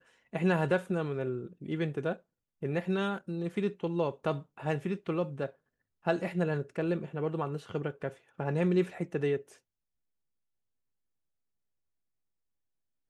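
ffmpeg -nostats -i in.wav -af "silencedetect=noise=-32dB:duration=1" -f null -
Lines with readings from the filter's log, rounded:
silence_start: 9.37
silence_end: 13.10 | silence_duration: 3.73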